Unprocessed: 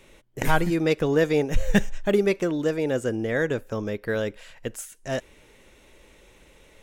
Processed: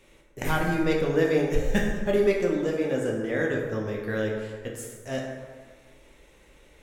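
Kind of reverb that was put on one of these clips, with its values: plate-style reverb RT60 1.5 s, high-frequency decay 0.5×, DRR -1.5 dB; trim -5.5 dB

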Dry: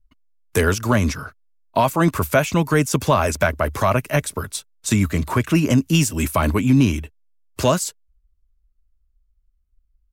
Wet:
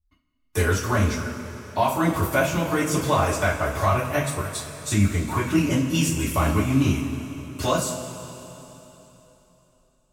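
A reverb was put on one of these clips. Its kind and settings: two-slope reverb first 0.28 s, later 3.5 s, from -17 dB, DRR -8 dB; trim -11.5 dB

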